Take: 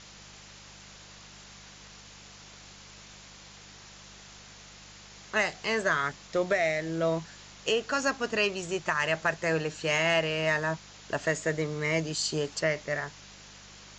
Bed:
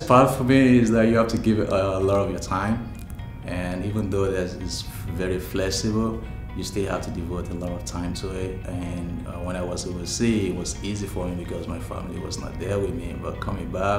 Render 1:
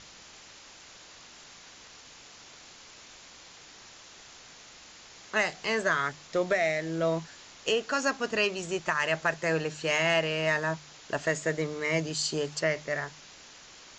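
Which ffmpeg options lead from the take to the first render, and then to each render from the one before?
-af "bandreject=f=50:t=h:w=4,bandreject=f=100:t=h:w=4,bandreject=f=150:t=h:w=4,bandreject=f=200:t=h:w=4"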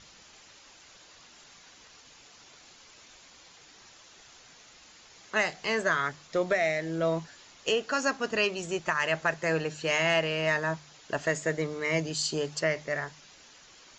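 -af "afftdn=nr=6:nf=-51"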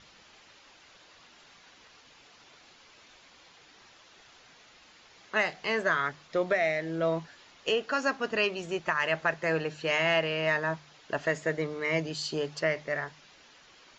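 -af "lowpass=4.3k,lowshelf=f=160:g=-4"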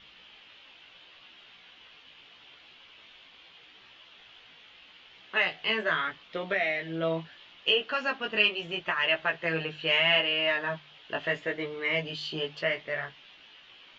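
-af "flanger=delay=15.5:depth=3.2:speed=0.77,lowpass=f=3.1k:t=q:w=4.1"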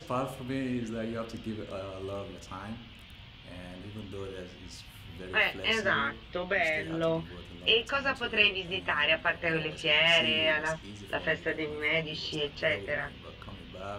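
-filter_complex "[1:a]volume=-17dB[a];[0:a][a]amix=inputs=2:normalize=0"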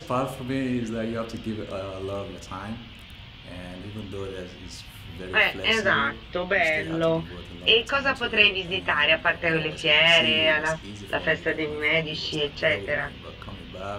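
-af "volume=6dB"

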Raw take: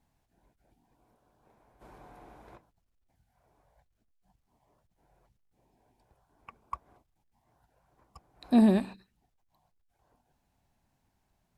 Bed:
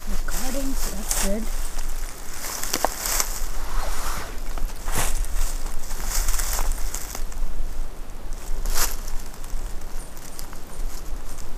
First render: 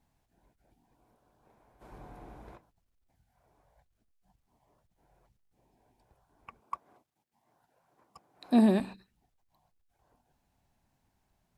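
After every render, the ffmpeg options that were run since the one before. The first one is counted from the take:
-filter_complex "[0:a]asettb=1/sr,asplit=3[a][b][c];[a]atrim=end=1.924[d];[b]atrim=start=1.92:end=2.52,asetpts=PTS-STARTPTS,afade=t=in:d=0.004:c=qsin,afade=t=out:st=0.596:d=0.004:c=qsin,lowshelf=f=310:g=8[e];[c]atrim=start=2.516[f];[d][e]acrossfade=d=0.004:c1=hsin:c2=qsin[g];[g][f]acrossfade=d=0.004:c1=qsin:c2=hsin,asettb=1/sr,asplit=3[h][i][j];[h]atrim=end=6.604[k];[i]atrim=start=6.6:end=8.8,asetpts=PTS-STARTPTS,afade=t=in:d=0.004:c=qsin,afade=t=out:st=2.196:d=0.004:c=qsin,highpass=180[l];[j]atrim=start=8.796[m];[k][l]acrossfade=d=0.004:c1=hsin:c2=qsin[n];[n][m]acrossfade=d=0.004:c1=qsin:c2=hsin"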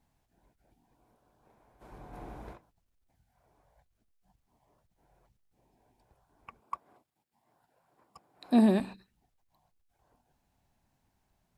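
-filter_complex "[0:a]asettb=1/sr,asplit=3[a][b][c];[a]atrim=end=6.594[d];[b]atrim=start=6.59:end=8.78,asetpts=PTS-STARTPTS,afade=t=in:d=0.004:c=qsin,afade=t=out:st=2.186:d=0.004:c=qsin,bandreject=f=6.1k:w=12[e];[c]atrim=start=8.776[f];[d][e]acrossfade=d=0.004:c1=hsin:c2=qsin[g];[g][f]acrossfade=d=0.004:c1=qsin:c2=hsin,asplit=3[h][i][j];[h]atrim=end=2.132[k];[i]atrim=start=2.128:end=2.532,asetpts=PTS-STARTPTS,volume=4.5dB[l];[j]atrim=start=2.528[m];[k][l]acrossfade=d=0.004:c1=hsin:c2=hsin[n];[n][m]acrossfade=d=0.004:c1=hsin:c2=hsin"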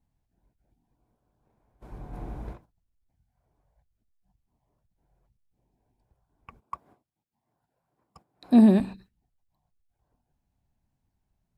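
-af "agate=range=-10dB:threshold=-58dB:ratio=16:detection=peak,lowshelf=f=270:g=11.5"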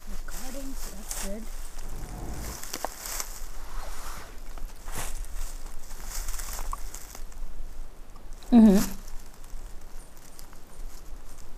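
-filter_complex "[1:a]volume=-10.5dB[a];[0:a][a]amix=inputs=2:normalize=0"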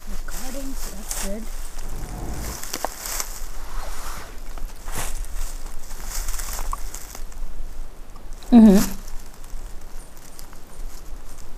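-af "volume=6dB,alimiter=limit=-3dB:level=0:latency=1"

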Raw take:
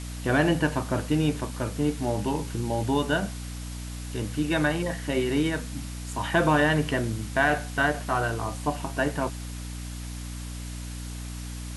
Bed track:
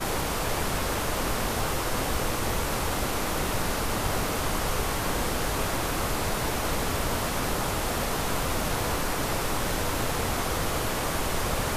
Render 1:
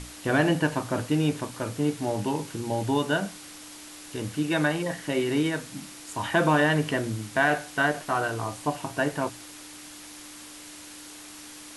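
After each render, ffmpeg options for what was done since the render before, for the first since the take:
-af "bandreject=f=60:t=h:w=6,bandreject=f=120:t=h:w=6,bandreject=f=180:t=h:w=6,bandreject=f=240:t=h:w=6"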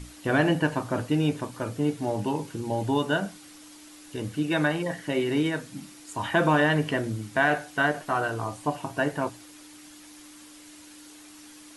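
-af "afftdn=nr=7:nf=-44"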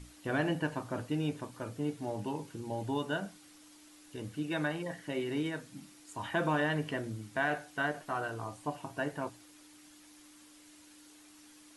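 -af "volume=-9dB"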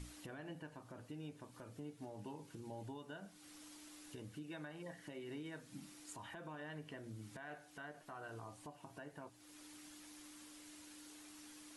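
-af "acompressor=threshold=-45dB:ratio=2.5,alimiter=level_in=15.5dB:limit=-24dB:level=0:latency=1:release=476,volume=-15.5dB"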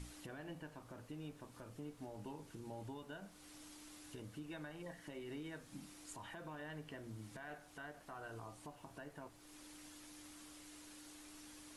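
-filter_complex "[1:a]volume=-40.5dB[a];[0:a][a]amix=inputs=2:normalize=0"

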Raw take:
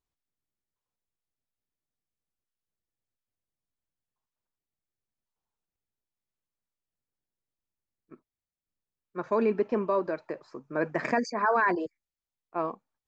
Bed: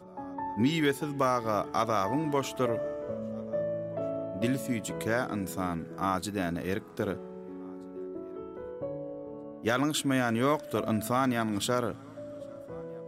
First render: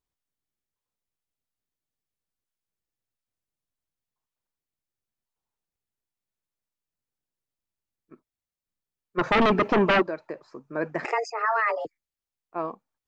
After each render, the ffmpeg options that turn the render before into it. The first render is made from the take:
-filter_complex "[0:a]asplit=3[a][b][c];[a]afade=t=out:st=9.17:d=0.02[d];[b]aeval=exprs='0.168*sin(PI/2*3.16*val(0)/0.168)':c=same,afade=t=in:st=9.17:d=0.02,afade=t=out:st=10.01:d=0.02[e];[c]afade=t=in:st=10.01:d=0.02[f];[d][e][f]amix=inputs=3:normalize=0,asettb=1/sr,asplit=3[g][h][i];[g]atrim=end=11.054[j];[h]atrim=start=11.05:end=11.85,asetpts=PTS-STARTPTS,afade=t=in:d=0.004:c=qsin,afade=t=out:st=0.796:d=0.004:c=qsin,afreqshift=220[k];[i]atrim=start=11.846[l];[j][k]acrossfade=d=0.004:c1=hsin:c2=qsin[m];[m][l]acrossfade=d=0.004:c1=qsin:c2=hsin"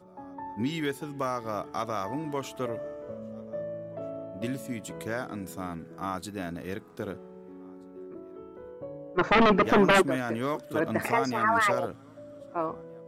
-filter_complex "[1:a]volume=-4dB[a];[0:a][a]amix=inputs=2:normalize=0"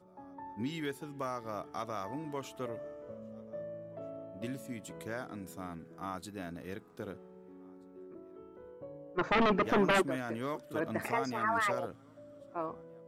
-af "volume=-7dB"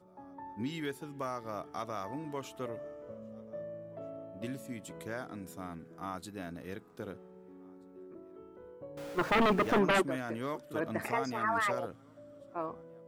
-filter_complex "[0:a]asettb=1/sr,asplit=3[a][b][c];[a]atrim=end=8.974[d];[b]atrim=start=8.97:end=9.79,asetpts=PTS-STARTPTS,afade=t=in:d=0.004:c=qsin,afade=t=out:st=0.816:d=0.004:c=qsin,aeval=exprs='val(0)+0.5*0.00944*sgn(val(0))':c=same[e];[c]atrim=start=9.786[f];[d][e]acrossfade=d=0.004:c1=hsin:c2=qsin[g];[g][f]acrossfade=d=0.004:c1=qsin:c2=hsin"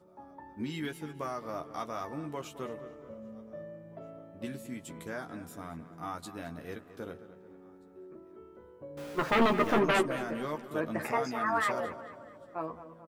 -filter_complex "[0:a]asplit=2[a][b];[b]adelay=13,volume=-5.5dB[c];[a][c]amix=inputs=2:normalize=0,asplit=2[d][e];[e]adelay=217,lowpass=f=3.5k:p=1,volume=-13dB,asplit=2[f][g];[g]adelay=217,lowpass=f=3.5k:p=1,volume=0.49,asplit=2[h][i];[i]adelay=217,lowpass=f=3.5k:p=1,volume=0.49,asplit=2[j][k];[k]adelay=217,lowpass=f=3.5k:p=1,volume=0.49,asplit=2[l][m];[m]adelay=217,lowpass=f=3.5k:p=1,volume=0.49[n];[d][f][h][j][l][n]amix=inputs=6:normalize=0"

